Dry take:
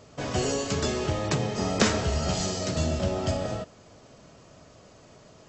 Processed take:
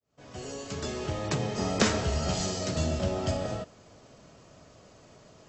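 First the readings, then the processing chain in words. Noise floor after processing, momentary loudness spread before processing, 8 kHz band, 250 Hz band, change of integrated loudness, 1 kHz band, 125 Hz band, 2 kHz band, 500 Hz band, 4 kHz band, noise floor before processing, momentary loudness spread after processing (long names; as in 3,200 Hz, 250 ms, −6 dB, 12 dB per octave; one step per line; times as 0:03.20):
−56 dBFS, 7 LU, −3.5 dB, −3.0 dB, −3.0 dB, −3.0 dB, −3.0 dB, −3.0 dB, −3.5 dB, −3.0 dB, −53 dBFS, 14 LU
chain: fade in at the beginning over 1.53 s
level −2 dB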